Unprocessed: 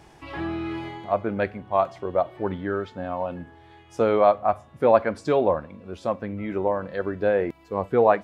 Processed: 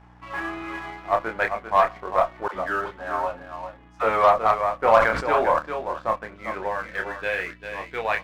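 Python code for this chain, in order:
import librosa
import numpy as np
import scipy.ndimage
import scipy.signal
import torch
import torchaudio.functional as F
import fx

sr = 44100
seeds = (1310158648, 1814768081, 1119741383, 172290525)

p1 = fx.dynamic_eq(x, sr, hz=2200.0, q=1.3, threshold_db=-43.0, ratio=4.0, max_db=7)
p2 = fx.filter_sweep_bandpass(p1, sr, from_hz=1200.0, to_hz=3000.0, start_s=6.25, end_s=7.51, q=1.5)
p3 = fx.add_hum(p2, sr, base_hz=60, snr_db=20)
p4 = fx.doubler(p3, sr, ms=27.0, db=-5.5)
p5 = p4 + fx.echo_single(p4, sr, ms=396, db=-8.0, dry=0)
p6 = fx.cheby_harmonics(p5, sr, harmonics=(8,), levels_db=(-30,), full_scale_db=-7.0)
p7 = fx.dispersion(p6, sr, late='lows', ms=68.0, hz=410.0, at=(2.48, 4.39))
p8 = fx.leveller(p7, sr, passes=1)
p9 = fx.sustainer(p8, sr, db_per_s=68.0, at=(4.91, 5.59))
y = p9 * librosa.db_to_amplitude(2.0)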